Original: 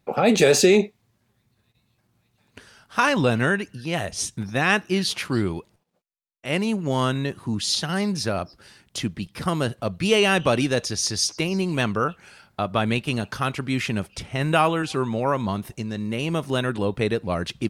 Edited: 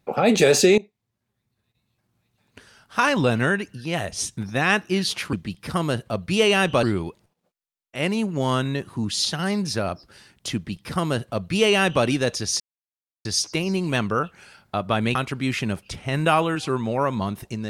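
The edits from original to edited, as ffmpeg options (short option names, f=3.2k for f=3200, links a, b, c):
-filter_complex "[0:a]asplit=6[a][b][c][d][e][f];[a]atrim=end=0.78,asetpts=PTS-STARTPTS,afade=t=out:st=0.776:d=0.004:c=hsin:silence=0.105925[g];[b]atrim=start=0.78:end=5.332,asetpts=PTS-STARTPTS,afade=t=in:d=2.29:silence=0.105925[h];[c]atrim=start=9.048:end=10.552[i];[d]atrim=start=5.328:end=11.1,asetpts=PTS-STARTPTS,afade=t=out:st=5.768:d=0.004:c=hsin,apad=pad_dur=0.65[j];[e]atrim=start=11.1:end=13.002,asetpts=PTS-STARTPTS,afade=t=in:d=0.004:c=hsin[k];[f]atrim=start=13.418[l];[g][h]concat=n=2:v=0:a=1[m];[m][i]acrossfade=d=0.004:c1=hsin:c2=hsin[n];[j][k]concat=n=2:v=0:a=1[o];[n][o]acrossfade=d=0.004:c1=hsin:c2=hsin[p];[p][l]acrossfade=d=0.004:c1=hsin:c2=hsin"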